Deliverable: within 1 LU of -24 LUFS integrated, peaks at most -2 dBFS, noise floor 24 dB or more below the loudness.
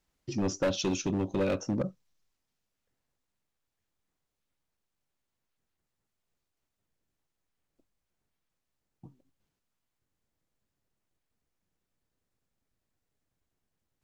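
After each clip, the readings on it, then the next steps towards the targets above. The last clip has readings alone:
clipped 0.8%; flat tops at -23.5 dBFS; loudness -31.5 LUFS; peak -23.5 dBFS; loudness target -24.0 LUFS
-> clip repair -23.5 dBFS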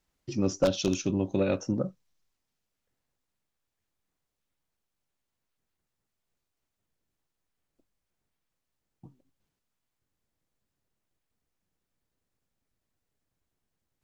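clipped 0.0%; loudness -29.0 LUFS; peak -14.5 dBFS; loudness target -24.0 LUFS
-> gain +5 dB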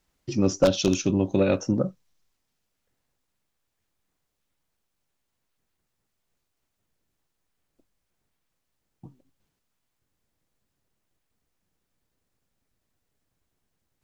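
loudness -24.0 LUFS; peak -9.5 dBFS; noise floor -79 dBFS

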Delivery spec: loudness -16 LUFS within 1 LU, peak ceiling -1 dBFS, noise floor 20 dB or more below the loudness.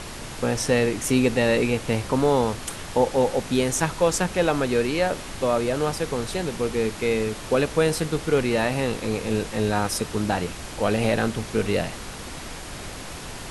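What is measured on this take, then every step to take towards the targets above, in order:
noise floor -36 dBFS; noise floor target -44 dBFS; loudness -24.0 LUFS; peak -7.0 dBFS; loudness target -16.0 LUFS
-> noise print and reduce 8 dB; gain +8 dB; limiter -1 dBFS

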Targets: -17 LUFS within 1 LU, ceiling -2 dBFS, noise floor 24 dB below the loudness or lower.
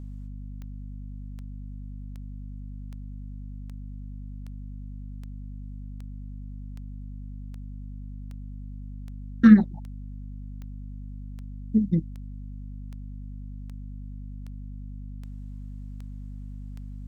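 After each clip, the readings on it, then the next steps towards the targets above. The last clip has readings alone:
clicks 22; hum 50 Hz; harmonics up to 250 Hz; hum level -35 dBFS; loudness -30.0 LUFS; peak -3.5 dBFS; loudness target -17.0 LUFS
-> de-click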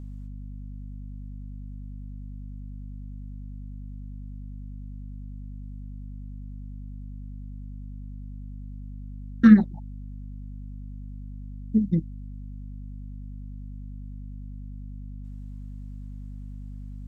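clicks 0; hum 50 Hz; harmonics up to 250 Hz; hum level -35 dBFS
-> de-hum 50 Hz, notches 5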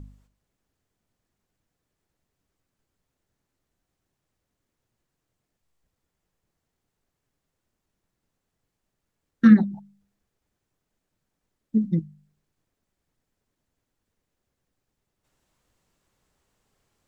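hum none; loudness -20.5 LUFS; peak -4.5 dBFS; loudness target -17.0 LUFS
-> gain +3.5 dB; limiter -2 dBFS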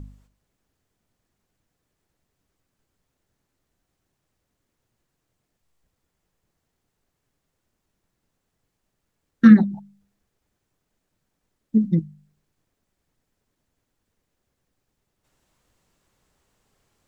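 loudness -17.5 LUFS; peak -2.0 dBFS; noise floor -78 dBFS

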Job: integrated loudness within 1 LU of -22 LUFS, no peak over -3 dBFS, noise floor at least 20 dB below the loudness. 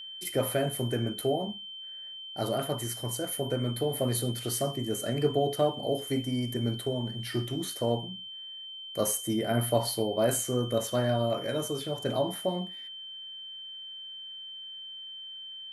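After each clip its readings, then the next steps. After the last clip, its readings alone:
steady tone 3100 Hz; tone level -40 dBFS; loudness -31.0 LUFS; peak -12.5 dBFS; loudness target -22.0 LUFS
-> notch 3100 Hz, Q 30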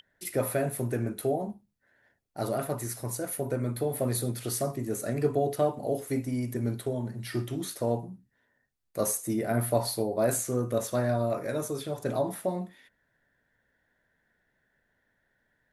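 steady tone none; loudness -30.5 LUFS; peak -12.5 dBFS; loudness target -22.0 LUFS
-> gain +8.5 dB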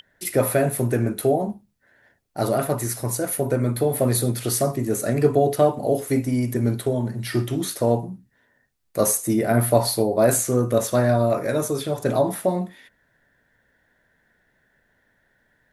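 loudness -22.0 LUFS; peak -4.0 dBFS; noise floor -67 dBFS

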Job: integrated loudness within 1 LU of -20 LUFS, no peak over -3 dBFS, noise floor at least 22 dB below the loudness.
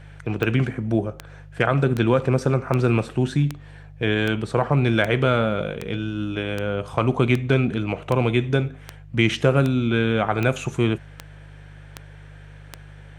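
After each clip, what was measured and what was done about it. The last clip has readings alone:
clicks 17; hum 50 Hz; harmonics up to 150 Hz; hum level -40 dBFS; loudness -22.0 LUFS; peak -3.5 dBFS; loudness target -20.0 LUFS
-> de-click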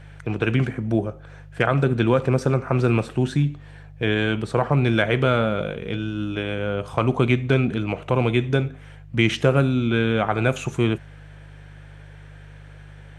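clicks 0; hum 50 Hz; harmonics up to 150 Hz; hum level -40 dBFS
-> de-hum 50 Hz, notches 3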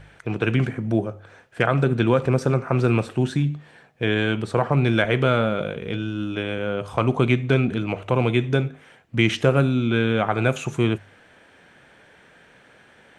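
hum none; loudness -22.5 LUFS; peak -3.5 dBFS; loudness target -20.0 LUFS
-> gain +2.5 dB; limiter -3 dBFS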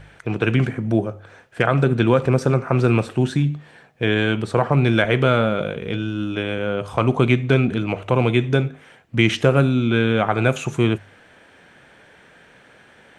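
loudness -20.0 LUFS; peak -3.0 dBFS; noise floor -51 dBFS

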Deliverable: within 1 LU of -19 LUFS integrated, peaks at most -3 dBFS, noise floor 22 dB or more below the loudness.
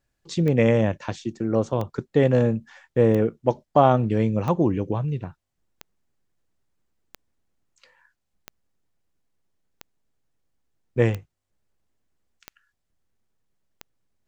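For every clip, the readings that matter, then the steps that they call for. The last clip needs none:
clicks 11; loudness -23.0 LUFS; peak -3.0 dBFS; loudness target -19.0 LUFS
-> de-click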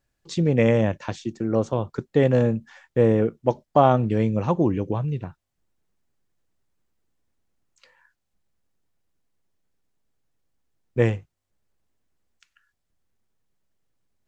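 clicks 0; loudness -22.5 LUFS; peak -3.0 dBFS; loudness target -19.0 LUFS
-> gain +3.5 dB; limiter -3 dBFS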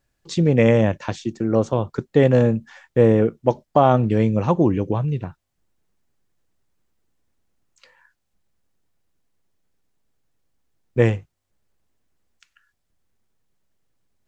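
loudness -19.5 LUFS; peak -3.0 dBFS; noise floor -75 dBFS

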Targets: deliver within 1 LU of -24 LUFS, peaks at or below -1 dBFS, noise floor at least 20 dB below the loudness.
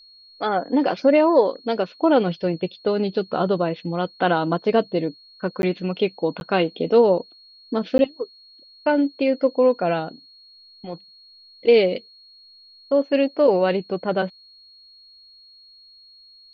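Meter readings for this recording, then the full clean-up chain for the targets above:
dropouts 3; longest dropout 11 ms; steady tone 4300 Hz; tone level -47 dBFS; loudness -21.5 LUFS; peak -5.5 dBFS; loudness target -24.0 LUFS
-> interpolate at 5.62/6.4/7.98, 11 ms; notch 4300 Hz, Q 30; gain -2.5 dB

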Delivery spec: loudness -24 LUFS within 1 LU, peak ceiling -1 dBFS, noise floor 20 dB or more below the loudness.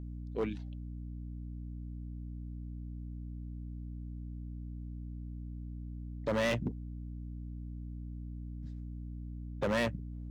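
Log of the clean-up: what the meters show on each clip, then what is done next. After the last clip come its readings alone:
clipped 0.8%; flat tops at -26.5 dBFS; hum 60 Hz; harmonics up to 300 Hz; hum level -40 dBFS; loudness -40.0 LUFS; peak -26.5 dBFS; loudness target -24.0 LUFS
-> clip repair -26.5 dBFS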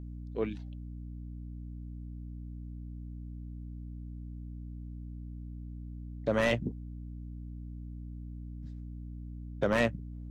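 clipped 0.0%; hum 60 Hz; harmonics up to 300 Hz; hum level -40 dBFS
-> de-hum 60 Hz, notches 5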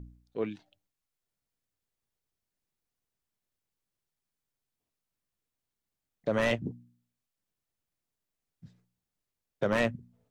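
hum none; loudness -32.0 LUFS; peak -17.0 dBFS; loudness target -24.0 LUFS
-> gain +8 dB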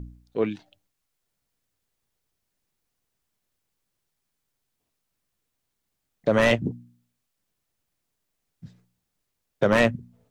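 loudness -24.0 LUFS; peak -9.0 dBFS; noise floor -80 dBFS

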